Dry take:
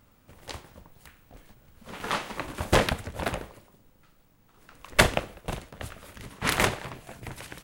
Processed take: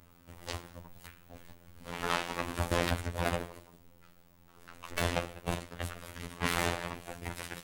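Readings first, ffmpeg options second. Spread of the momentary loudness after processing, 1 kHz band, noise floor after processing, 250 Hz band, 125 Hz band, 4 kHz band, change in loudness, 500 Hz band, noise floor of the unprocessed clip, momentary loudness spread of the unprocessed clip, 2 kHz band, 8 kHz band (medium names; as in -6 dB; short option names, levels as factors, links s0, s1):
21 LU, -5.0 dB, -60 dBFS, -4.0 dB, -3.5 dB, -6.5 dB, -7.5 dB, -5.5 dB, -61 dBFS, 20 LU, -7.0 dB, -6.5 dB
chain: -af "asoftclip=type=tanh:threshold=0.1,afftfilt=real='hypot(re,im)*cos(PI*b)':imag='0':win_size=2048:overlap=0.75,alimiter=level_in=3.98:limit=0.891:release=50:level=0:latency=1,volume=0.398"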